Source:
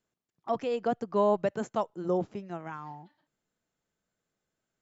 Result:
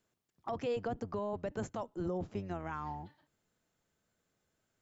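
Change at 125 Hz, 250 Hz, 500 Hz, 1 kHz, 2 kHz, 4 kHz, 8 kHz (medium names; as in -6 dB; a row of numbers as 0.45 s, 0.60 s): -1.5 dB, -6.0 dB, -9.0 dB, -8.5 dB, -4.0 dB, -5.0 dB, no reading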